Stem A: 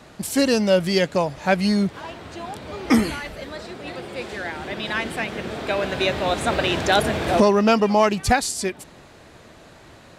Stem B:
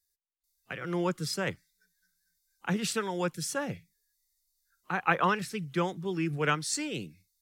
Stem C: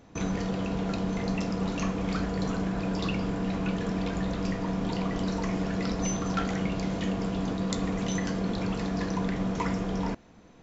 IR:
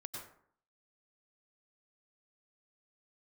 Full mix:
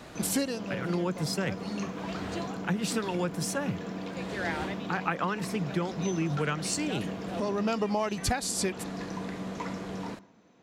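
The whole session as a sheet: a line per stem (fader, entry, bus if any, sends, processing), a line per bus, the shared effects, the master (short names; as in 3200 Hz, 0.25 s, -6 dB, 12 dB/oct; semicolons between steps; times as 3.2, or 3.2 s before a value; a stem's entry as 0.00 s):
-0.5 dB, 0.00 s, no send, auto duck -22 dB, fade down 0.25 s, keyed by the second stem
+1.0 dB, 0.00 s, no send, low shelf 270 Hz +6.5 dB
-6.5 dB, 0.00 s, send -14 dB, HPF 150 Hz 12 dB/oct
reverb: on, RT60 0.60 s, pre-delay 88 ms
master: compressor 10:1, threshold -25 dBFS, peak gain reduction 13 dB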